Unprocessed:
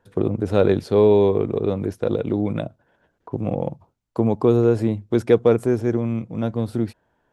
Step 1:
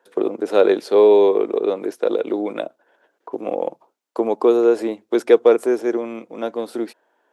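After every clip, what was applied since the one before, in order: HPF 330 Hz 24 dB/oct; gain +4 dB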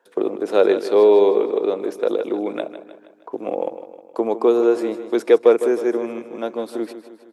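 feedback echo 0.156 s, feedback 52%, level -12 dB; gain -1 dB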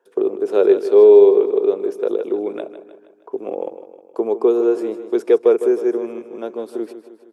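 thirty-one-band EQ 400 Hz +11 dB, 2000 Hz -4 dB, 4000 Hz -5 dB; gain -4.5 dB

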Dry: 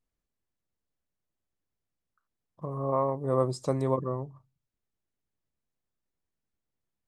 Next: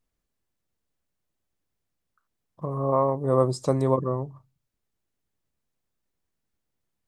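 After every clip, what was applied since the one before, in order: dynamic EQ 2400 Hz, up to -4 dB, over -47 dBFS, Q 1.4; gain +5 dB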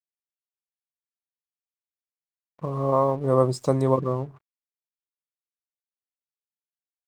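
crossover distortion -51.5 dBFS; gain +1.5 dB

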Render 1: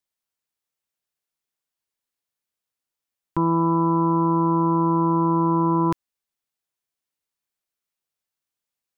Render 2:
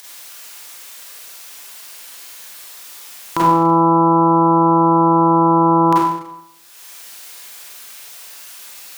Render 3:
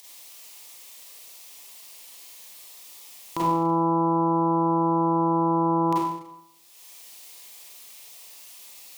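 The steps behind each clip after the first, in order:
HPF 960 Hz 6 dB/oct; upward compressor, threshold -25 dBFS; Schroeder reverb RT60 0.81 s, combs from 32 ms, DRR -6.5 dB; gain +8 dB
bell 1500 Hz -13.5 dB 0.44 oct; gain -8.5 dB

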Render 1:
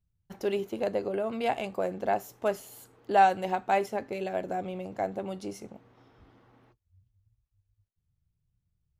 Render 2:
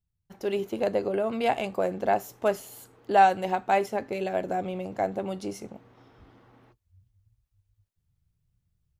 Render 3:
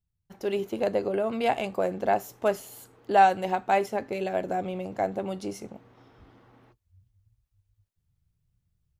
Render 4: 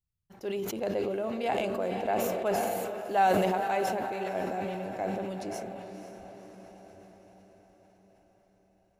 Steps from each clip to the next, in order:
AGC gain up to 8.5 dB; gain -5 dB
nothing audible
diffused feedback echo 0.51 s, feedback 58%, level -8 dB; sustainer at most 22 dB/s; gain -6.5 dB

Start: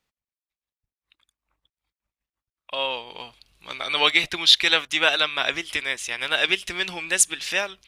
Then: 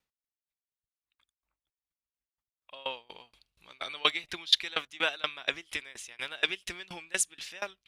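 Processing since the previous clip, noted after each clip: dB-ramp tremolo decaying 4.2 Hz, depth 25 dB; gain -3.5 dB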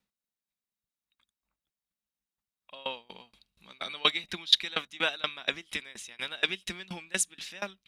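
small resonant body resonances 200/3800 Hz, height 12 dB, ringing for 55 ms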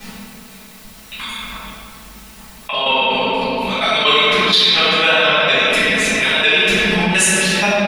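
comb 4.6 ms, depth 52%; reverb RT60 2.3 s, pre-delay 4 ms, DRR -16.5 dB; fast leveller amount 70%; gain -3 dB

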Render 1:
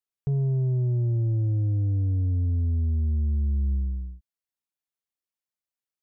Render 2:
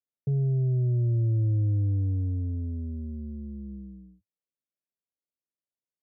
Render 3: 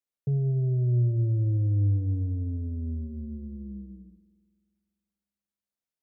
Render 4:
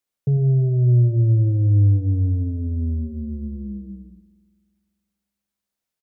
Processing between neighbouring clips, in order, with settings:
elliptic band-pass 100–610 Hz, stop band 40 dB
reverb RT60 1.9 s, pre-delay 49 ms, DRR 12.5 dB
echo 97 ms -12.5 dB; gain +7.5 dB

